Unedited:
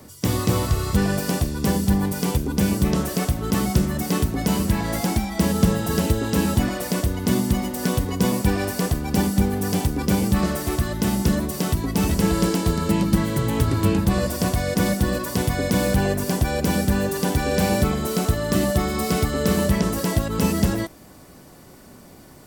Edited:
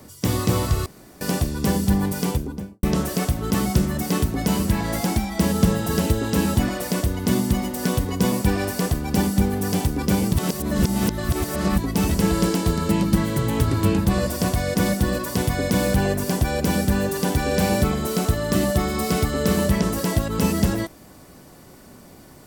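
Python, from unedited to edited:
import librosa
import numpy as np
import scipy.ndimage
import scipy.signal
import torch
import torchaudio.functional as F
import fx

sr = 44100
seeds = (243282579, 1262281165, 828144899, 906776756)

y = fx.studio_fade_out(x, sr, start_s=2.2, length_s=0.63)
y = fx.edit(y, sr, fx.room_tone_fill(start_s=0.86, length_s=0.35),
    fx.reverse_span(start_s=10.33, length_s=1.45), tone=tone)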